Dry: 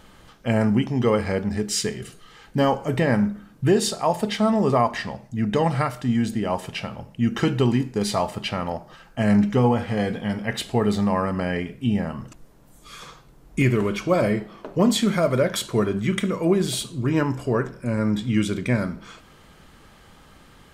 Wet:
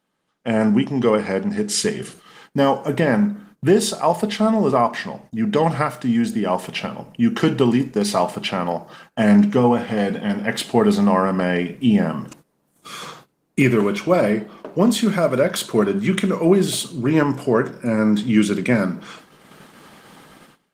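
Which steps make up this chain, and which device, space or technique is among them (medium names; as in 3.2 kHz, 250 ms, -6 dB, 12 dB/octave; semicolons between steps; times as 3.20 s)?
video call (high-pass 150 Hz 24 dB/octave; level rider gain up to 12 dB; gate -40 dBFS, range -18 dB; trim -2.5 dB; Opus 24 kbps 48 kHz)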